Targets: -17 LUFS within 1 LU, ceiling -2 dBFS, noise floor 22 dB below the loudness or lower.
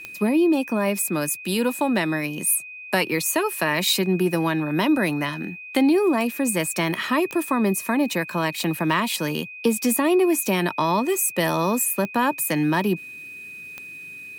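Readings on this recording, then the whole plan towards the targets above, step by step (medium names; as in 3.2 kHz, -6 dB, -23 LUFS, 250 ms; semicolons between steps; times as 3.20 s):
clicks found 6; steady tone 2.5 kHz; tone level -36 dBFS; loudness -22.0 LUFS; peak level -6.0 dBFS; loudness target -17.0 LUFS
-> de-click; band-stop 2.5 kHz, Q 30; trim +5 dB; peak limiter -2 dBFS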